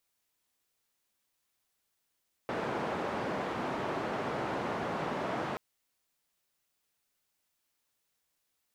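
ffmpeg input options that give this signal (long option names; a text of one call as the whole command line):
ffmpeg -f lavfi -i "anoisesrc=color=white:duration=3.08:sample_rate=44100:seed=1,highpass=frequency=140,lowpass=frequency=920,volume=-15.7dB" out.wav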